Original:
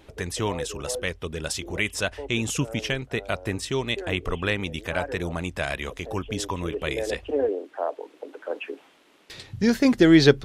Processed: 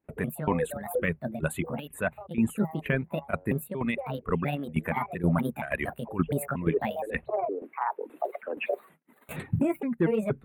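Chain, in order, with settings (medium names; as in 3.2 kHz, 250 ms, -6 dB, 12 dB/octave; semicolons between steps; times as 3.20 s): pitch shift switched off and on +6 st, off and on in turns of 234 ms; recorder AGC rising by 8.8 dB/s; in parallel at -3.5 dB: wavefolder -10.5 dBFS; on the sum: reverb removal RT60 1.8 s; gate -45 dBFS, range -35 dB; high-pass 110 Hz 6 dB/octave; peaking EQ 230 Hz +9 dB 0.35 oct; reverse; compression 6:1, threshold -22 dBFS, peak gain reduction 15.5 dB; reverse; graphic EQ with 31 bands 160 Hz +11 dB, 3.15 kHz -8 dB, 5 kHz -3 dB; tremolo saw down 2.1 Hz, depth 75%; Butterworth band-stop 5.4 kHz, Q 0.63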